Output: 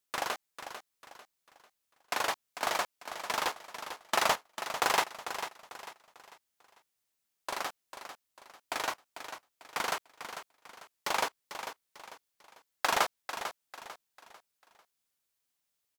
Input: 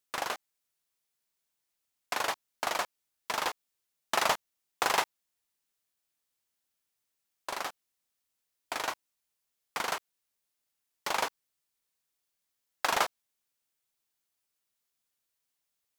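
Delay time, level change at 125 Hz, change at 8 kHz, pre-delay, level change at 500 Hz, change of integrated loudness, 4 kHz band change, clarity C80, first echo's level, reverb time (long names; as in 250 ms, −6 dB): 446 ms, +0.5 dB, +0.5 dB, no reverb audible, +0.5 dB, −1.0 dB, +0.5 dB, no reverb audible, −10.0 dB, no reverb audible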